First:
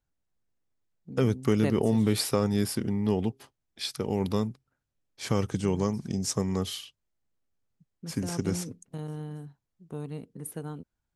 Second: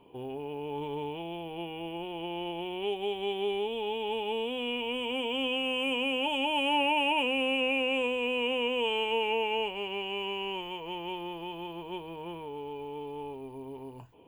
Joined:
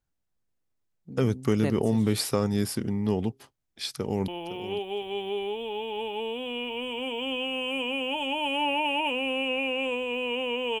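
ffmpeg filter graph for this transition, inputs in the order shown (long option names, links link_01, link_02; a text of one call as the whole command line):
ffmpeg -i cue0.wav -i cue1.wav -filter_complex "[0:a]apad=whole_dur=10.8,atrim=end=10.8,atrim=end=4.282[link_01];[1:a]atrim=start=2.398:end=8.92[link_02];[link_01][link_02]acrossfade=duration=0.004:curve1=hsin:curve2=hsin,asplit=2[link_03][link_04];[link_04]afade=type=in:start_time=3.93:duration=0.01,afade=type=out:start_time=4.28:duration=0.01,aecho=0:1:510|1020:0.223872|0.0335808[link_05];[link_03][link_05]amix=inputs=2:normalize=0" out.wav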